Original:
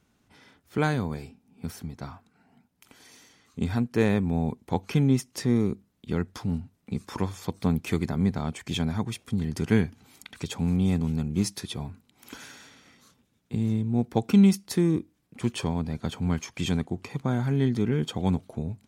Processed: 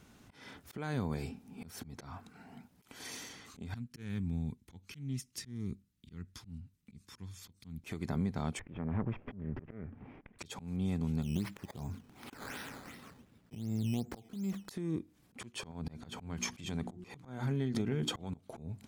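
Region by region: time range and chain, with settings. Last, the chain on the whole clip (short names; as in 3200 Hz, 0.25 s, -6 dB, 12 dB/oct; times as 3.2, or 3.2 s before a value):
3.74–7.84 passive tone stack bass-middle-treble 6-0-2 + Doppler distortion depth 0.1 ms
8.59–10.39 minimum comb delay 0.37 ms + LPF 1800 Hz 24 dB/oct + compressor 2:1, threshold -28 dBFS
11.22–14.69 compressor 5:1, threshold -27 dBFS + air absorption 190 m + decimation with a swept rate 11× 2.7 Hz
15.71–18.34 notches 60/120/180/240/300/360 Hz + compressor 3:1, threshold -31 dBFS
whole clip: compressor 16:1, threshold -37 dBFS; auto swell 0.25 s; gain +8 dB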